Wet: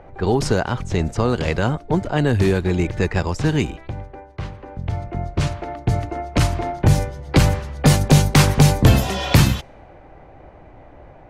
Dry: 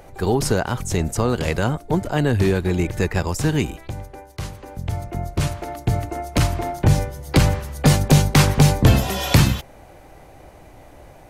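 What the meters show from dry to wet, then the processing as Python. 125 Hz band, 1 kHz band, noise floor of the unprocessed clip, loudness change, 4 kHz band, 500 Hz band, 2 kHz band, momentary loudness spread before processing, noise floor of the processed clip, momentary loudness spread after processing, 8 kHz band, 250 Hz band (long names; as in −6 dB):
+1.0 dB, +1.0 dB, −46 dBFS, +1.0 dB, +0.5 dB, +1.0 dB, +1.0 dB, 14 LU, −45 dBFS, 14 LU, −0.5 dB, +1.0 dB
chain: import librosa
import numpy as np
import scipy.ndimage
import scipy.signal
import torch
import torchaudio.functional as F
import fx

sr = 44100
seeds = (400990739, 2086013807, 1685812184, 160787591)

y = fx.env_lowpass(x, sr, base_hz=1900.0, full_db=-11.5)
y = F.gain(torch.from_numpy(y), 1.0).numpy()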